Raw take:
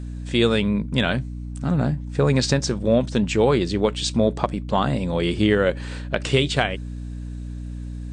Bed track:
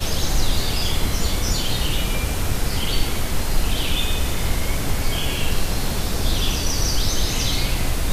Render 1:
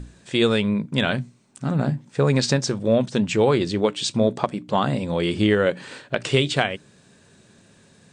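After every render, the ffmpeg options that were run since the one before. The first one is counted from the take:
-af "bandreject=f=60:t=h:w=6,bandreject=f=120:t=h:w=6,bandreject=f=180:t=h:w=6,bandreject=f=240:t=h:w=6,bandreject=f=300:t=h:w=6"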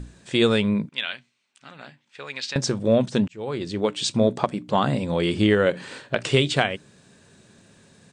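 -filter_complex "[0:a]asettb=1/sr,asplit=3[s0][s1][s2];[s0]atrim=end=0.894[s3];[s1]atrim=start=0.89:end=2.56,asetpts=PTS-STARTPTS,afade=t=in:d=0.004:c=qsin,afade=t=out:st=1.666:d=0.004:c=qsin,bandpass=f=2800:t=q:w=1.6[s4];[s2]atrim=start=2.556[s5];[s3][s4]acrossfade=d=0.004:c1=hsin:c2=qsin[s6];[s6][s5]acrossfade=d=0.004:c1=qsin:c2=hsin,asplit=3[s7][s8][s9];[s7]afade=t=out:st=5.73:d=0.02[s10];[s8]asplit=2[s11][s12];[s12]adelay=45,volume=0.211[s13];[s11][s13]amix=inputs=2:normalize=0,afade=t=in:st=5.73:d=0.02,afade=t=out:st=6.18:d=0.02[s14];[s9]afade=t=in:st=6.18:d=0.02[s15];[s10][s14][s15]amix=inputs=3:normalize=0,asplit=2[s16][s17];[s16]atrim=end=3.28,asetpts=PTS-STARTPTS,afade=t=out:st=3.276:d=0.004:c=hsin[s18];[s17]atrim=start=3.28,asetpts=PTS-STARTPTS,afade=t=in:d=0.77[s19];[s18][s19]concat=n=2:v=0:a=1"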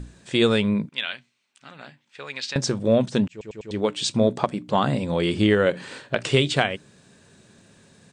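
-filter_complex "[0:a]asplit=5[s0][s1][s2][s3][s4];[s0]atrim=end=3.412[s5];[s1]atrim=start=3.308:end=3.412[s6];[s2]atrim=start=3.308:end=3.412[s7];[s3]atrim=start=3.308:end=3.412[s8];[s4]atrim=start=3.708[s9];[s5][s6]acrossfade=d=0.004:c1=hsin:c2=hsin[s10];[s10][s7]acrossfade=d=0.004:c1=hsin:c2=hsin[s11];[s11][s8]acrossfade=d=0.004:c1=hsin:c2=hsin[s12];[s12][s9]acrossfade=d=0.004:c1=hsin:c2=hsin"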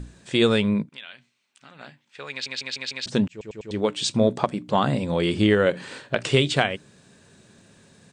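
-filter_complex "[0:a]asplit=3[s0][s1][s2];[s0]afade=t=out:st=0.82:d=0.02[s3];[s1]acompressor=threshold=0.00562:ratio=2:attack=3.2:release=140:knee=1:detection=peak,afade=t=in:st=0.82:d=0.02,afade=t=out:st=1.79:d=0.02[s4];[s2]afade=t=in:st=1.79:d=0.02[s5];[s3][s4][s5]amix=inputs=3:normalize=0,asplit=6[s6][s7][s8][s9][s10][s11];[s6]atrim=end=2.462[s12];[s7]atrim=start=2.308:end=2.462[s13];[s8]atrim=start=2.308:end=2.462[s14];[s9]atrim=start=2.308:end=2.462[s15];[s10]atrim=start=2.308:end=2.462[s16];[s11]atrim=start=3.058[s17];[s12][s13]acrossfade=d=0.004:c1=hsin:c2=hsin[s18];[s18][s14]acrossfade=d=0.004:c1=hsin:c2=hsin[s19];[s19][s15]acrossfade=d=0.004:c1=hsin:c2=hsin[s20];[s20][s16]acrossfade=d=0.004:c1=hsin:c2=hsin[s21];[s21][s17]acrossfade=d=0.004:c1=hsin:c2=hsin"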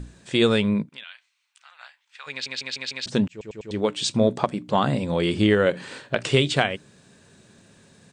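-filter_complex "[0:a]asplit=3[s0][s1][s2];[s0]afade=t=out:st=1.03:d=0.02[s3];[s1]highpass=f=890:w=0.5412,highpass=f=890:w=1.3066,afade=t=in:st=1.03:d=0.02,afade=t=out:st=2.26:d=0.02[s4];[s2]afade=t=in:st=2.26:d=0.02[s5];[s3][s4][s5]amix=inputs=3:normalize=0"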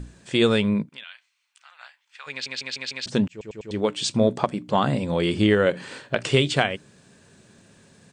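-af "bandreject=f=3800:w=25"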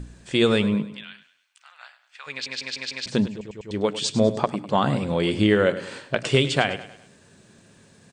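-af "aecho=1:1:101|202|303|404:0.2|0.0858|0.0369|0.0159"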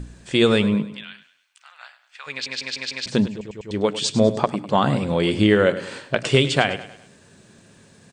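-af "volume=1.33"

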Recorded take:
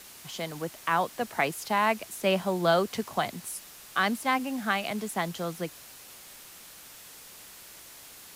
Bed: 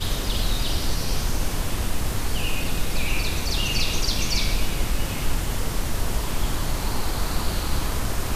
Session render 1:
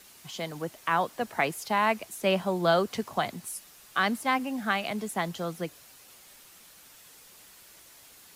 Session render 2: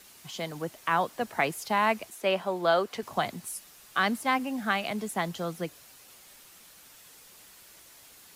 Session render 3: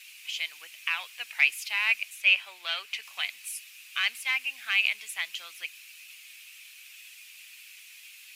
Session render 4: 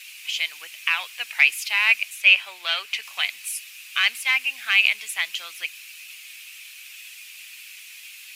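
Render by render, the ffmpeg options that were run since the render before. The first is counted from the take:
-af "afftdn=nr=6:nf=-49"
-filter_complex "[0:a]asettb=1/sr,asplit=3[s0][s1][s2];[s0]atrim=end=2.104[s3];[s1]atrim=start=2.1:end=3.03,asetpts=PTS-STARTPTS,afade=t=in:d=0.004:c=qsin,afade=t=out:st=0.926:d=0.004:c=qsin,bass=f=250:g=-12,treble=f=4000:g=-5[s4];[s2]atrim=start=3.026[s5];[s3][s4]acrossfade=d=0.004:c1=hsin:c2=qsin[s6];[s6][s5]acrossfade=d=0.004:c1=qsin:c2=hsin"
-af "asoftclip=type=tanh:threshold=0.178,highpass=f=2500:t=q:w=6.6"
-af "volume=2.24,alimiter=limit=0.708:level=0:latency=1"

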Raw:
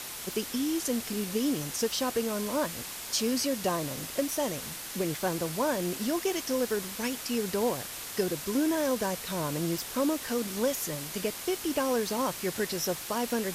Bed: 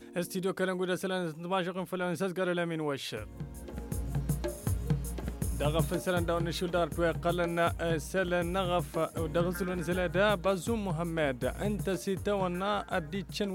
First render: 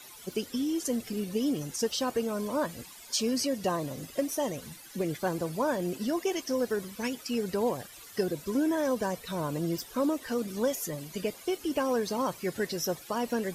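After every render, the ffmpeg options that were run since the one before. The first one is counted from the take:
-af "afftdn=nr=15:nf=-40"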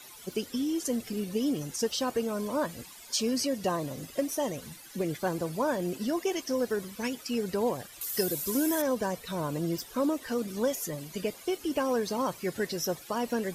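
-filter_complex "[0:a]asettb=1/sr,asplit=3[s0][s1][s2];[s0]atrim=end=8.014[s3];[s1]atrim=start=8.01:end=8.82,asetpts=PTS-STARTPTS,afade=t=in:d=0.004:c=qsin,afade=t=out:st=0.806:d=0.004:c=qsin,aemphasis=mode=production:type=75fm[s4];[s2]atrim=start=8.816[s5];[s3][s4]acrossfade=d=0.004:c1=hsin:c2=qsin[s6];[s6][s5]acrossfade=d=0.004:c1=qsin:c2=hsin"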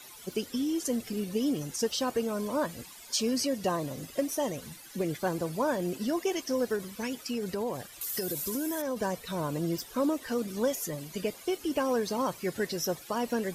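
-filter_complex "[0:a]asettb=1/sr,asplit=3[s0][s1][s2];[s0]atrim=end=6.764[s3];[s1]atrim=start=6.76:end=8.97,asetpts=PTS-STARTPTS,afade=t=in:d=0.004:c=qsin,afade=t=out:st=2.206:d=0.004:c=qsin,acompressor=threshold=0.0398:ratio=6:attack=3.2:release=140:knee=1:detection=peak[s4];[s2]atrim=start=8.966[s5];[s3][s4]acrossfade=d=0.004:c1=hsin:c2=qsin[s6];[s6][s5]acrossfade=d=0.004:c1=qsin:c2=hsin"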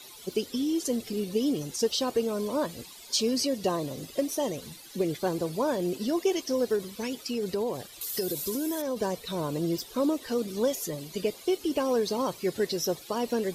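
-af "equalizer=f=400:t=o:w=0.67:g=5,equalizer=f=1600:t=o:w=0.67:g=-4,equalizer=f=4000:t=o:w=0.67:g=6"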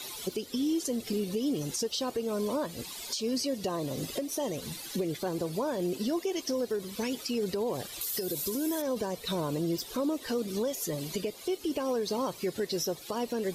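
-filter_complex "[0:a]asplit=2[s0][s1];[s1]acompressor=threshold=0.0178:ratio=6,volume=1.19[s2];[s0][s2]amix=inputs=2:normalize=0,alimiter=limit=0.075:level=0:latency=1:release=381"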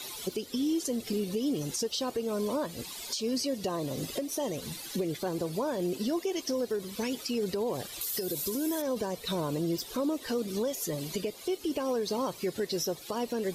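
-af anull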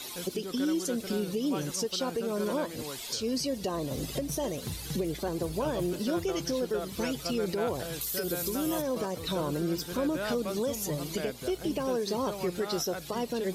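-filter_complex "[1:a]volume=0.376[s0];[0:a][s0]amix=inputs=2:normalize=0"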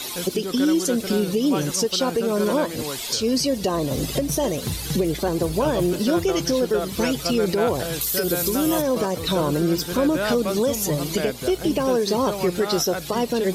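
-af "volume=2.99"

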